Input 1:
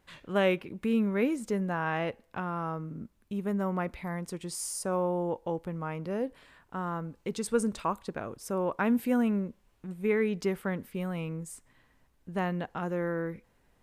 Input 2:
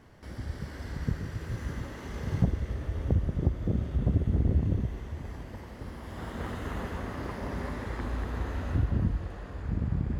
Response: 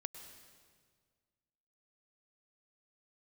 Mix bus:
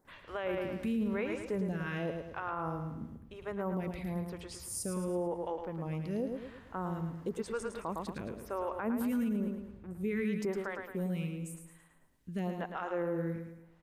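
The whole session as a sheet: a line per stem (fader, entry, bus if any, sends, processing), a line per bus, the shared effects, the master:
0.0 dB, 0.00 s, no send, echo send -7 dB, photocell phaser 0.96 Hz
-10.0 dB, 0.05 s, no send, no echo send, compressor, threshold -31 dBFS, peak gain reduction 13 dB; auto duck -11 dB, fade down 1.90 s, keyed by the first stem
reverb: off
echo: feedback echo 0.109 s, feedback 44%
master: limiter -26 dBFS, peak gain reduction 11.5 dB

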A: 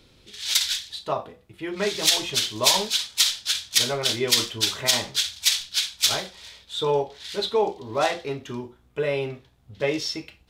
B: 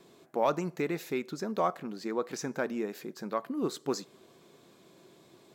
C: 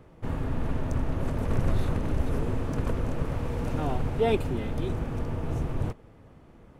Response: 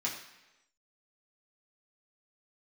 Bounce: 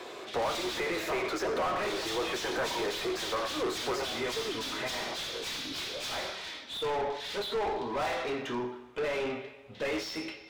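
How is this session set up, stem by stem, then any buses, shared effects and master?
-18.5 dB, 0.00 s, send -6 dB, dry
+0.5 dB, 0.00 s, send -5.5 dB, Chebyshev high-pass 320 Hz, order 8; gate -50 dBFS, range -7 dB; compressor 2.5:1, threshold -38 dBFS, peak gain reduction 10.5 dB
-11.0 dB, 0.15 s, no send, vowel sweep a-i 1 Hz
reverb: on, RT60 1.0 s, pre-delay 3 ms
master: overdrive pedal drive 33 dB, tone 1600 Hz, clips at -23 dBFS

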